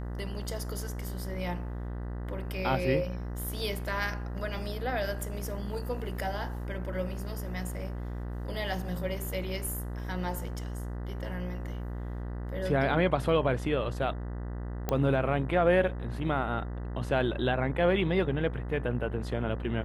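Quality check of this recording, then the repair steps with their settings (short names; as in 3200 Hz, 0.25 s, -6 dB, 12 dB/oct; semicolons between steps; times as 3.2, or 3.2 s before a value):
buzz 60 Hz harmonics 33 -36 dBFS
14.89 pop -15 dBFS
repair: de-click; de-hum 60 Hz, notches 33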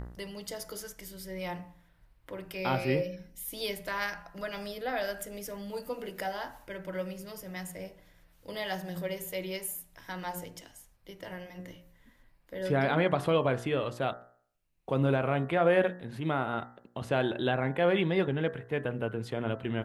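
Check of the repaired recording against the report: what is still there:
none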